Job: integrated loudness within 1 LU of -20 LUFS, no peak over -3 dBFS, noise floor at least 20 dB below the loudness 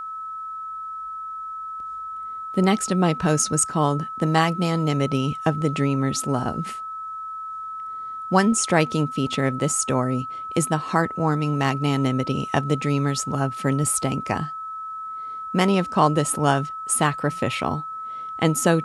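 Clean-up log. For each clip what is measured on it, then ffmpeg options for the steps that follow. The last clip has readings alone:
steady tone 1300 Hz; tone level -30 dBFS; loudness -23.5 LUFS; peak -3.5 dBFS; loudness target -20.0 LUFS
-> -af "bandreject=f=1.3k:w=30"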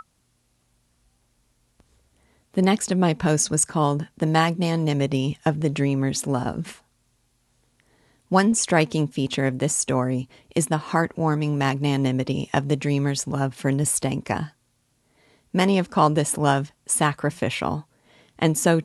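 steady tone none; loudness -23.0 LUFS; peak -4.0 dBFS; loudness target -20.0 LUFS
-> -af "volume=3dB,alimiter=limit=-3dB:level=0:latency=1"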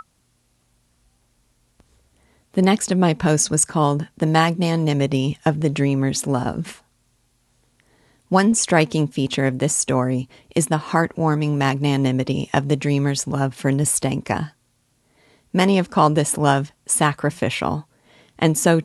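loudness -20.0 LUFS; peak -3.0 dBFS; noise floor -65 dBFS

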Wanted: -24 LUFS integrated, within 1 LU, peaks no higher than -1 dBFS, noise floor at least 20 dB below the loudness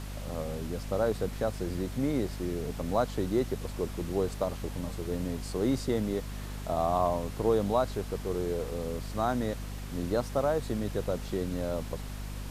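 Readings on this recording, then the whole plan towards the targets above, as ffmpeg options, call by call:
hum 50 Hz; harmonics up to 250 Hz; hum level -36 dBFS; noise floor -39 dBFS; noise floor target -52 dBFS; loudness -32.0 LUFS; peak -13.5 dBFS; loudness target -24.0 LUFS
-> -af "bandreject=f=50:t=h:w=4,bandreject=f=100:t=h:w=4,bandreject=f=150:t=h:w=4,bandreject=f=200:t=h:w=4,bandreject=f=250:t=h:w=4"
-af "afftdn=nr=13:nf=-39"
-af "volume=8dB"

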